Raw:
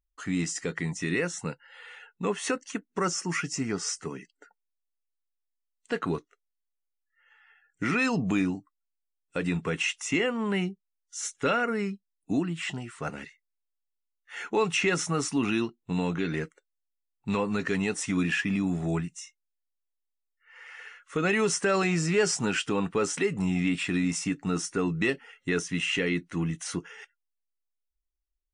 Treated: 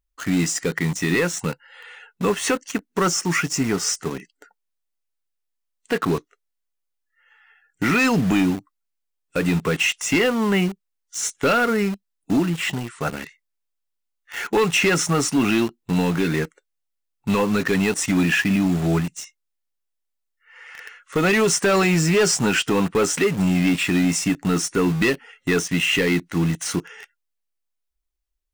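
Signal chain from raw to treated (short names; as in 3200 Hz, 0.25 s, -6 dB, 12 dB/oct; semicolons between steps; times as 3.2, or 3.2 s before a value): in parallel at -4 dB: requantised 6-bit, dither none; on the sum: overloaded stage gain 18 dB; gain +4.5 dB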